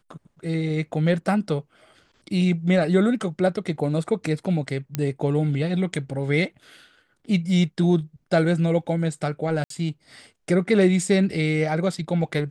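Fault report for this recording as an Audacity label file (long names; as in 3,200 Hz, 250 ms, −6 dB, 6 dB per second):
4.950000	4.950000	click −10 dBFS
9.640000	9.700000	drop-out 63 ms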